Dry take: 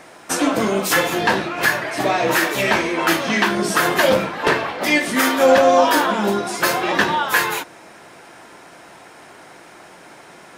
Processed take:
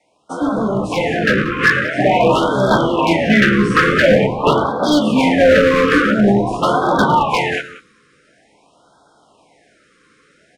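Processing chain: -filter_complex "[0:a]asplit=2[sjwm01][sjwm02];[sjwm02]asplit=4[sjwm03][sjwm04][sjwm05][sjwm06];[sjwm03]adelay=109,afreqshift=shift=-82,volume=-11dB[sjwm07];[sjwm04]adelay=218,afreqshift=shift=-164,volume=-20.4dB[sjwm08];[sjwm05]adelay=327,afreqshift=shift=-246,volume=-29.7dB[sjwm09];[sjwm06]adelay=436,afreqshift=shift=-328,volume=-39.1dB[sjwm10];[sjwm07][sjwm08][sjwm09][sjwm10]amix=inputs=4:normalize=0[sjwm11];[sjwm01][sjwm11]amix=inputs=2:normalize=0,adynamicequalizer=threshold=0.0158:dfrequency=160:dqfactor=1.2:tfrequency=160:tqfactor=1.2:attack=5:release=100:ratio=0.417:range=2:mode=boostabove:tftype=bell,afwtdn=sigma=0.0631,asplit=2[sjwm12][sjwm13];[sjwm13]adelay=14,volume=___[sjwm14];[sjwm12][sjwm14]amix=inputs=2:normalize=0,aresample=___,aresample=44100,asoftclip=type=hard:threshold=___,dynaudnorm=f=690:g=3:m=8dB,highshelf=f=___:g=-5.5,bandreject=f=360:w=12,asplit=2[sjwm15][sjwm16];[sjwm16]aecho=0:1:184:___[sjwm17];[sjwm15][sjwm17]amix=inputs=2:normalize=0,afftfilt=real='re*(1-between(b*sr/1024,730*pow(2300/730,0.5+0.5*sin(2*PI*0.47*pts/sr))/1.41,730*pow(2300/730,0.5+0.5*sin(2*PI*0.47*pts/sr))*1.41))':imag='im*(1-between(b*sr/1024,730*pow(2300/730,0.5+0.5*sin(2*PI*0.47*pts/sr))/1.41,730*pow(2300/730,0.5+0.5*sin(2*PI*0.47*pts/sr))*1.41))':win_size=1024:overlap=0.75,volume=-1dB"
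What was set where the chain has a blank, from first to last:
-11dB, 22050, -12dB, 8500, 0.141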